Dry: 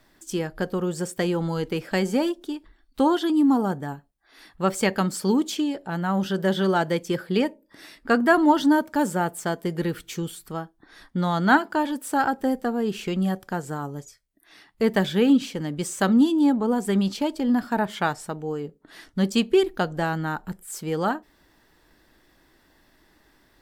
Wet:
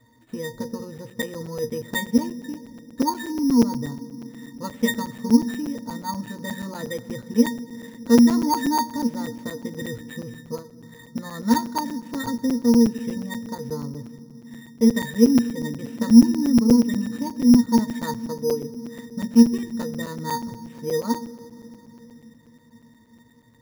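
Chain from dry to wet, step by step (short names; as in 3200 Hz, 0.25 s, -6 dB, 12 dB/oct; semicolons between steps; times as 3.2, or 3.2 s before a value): dynamic EQ 610 Hz, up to -8 dB, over -36 dBFS, Q 0.81; sine folder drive 9 dB, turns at -4 dBFS; octave resonator A#, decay 0.16 s; on a send at -19 dB: reverb RT60 3.5 s, pre-delay 77 ms; on the sum: careless resampling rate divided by 8×, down none, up hold; crackling interface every 0.12 s, samples 256, zero, from 0.98; gain +3 dB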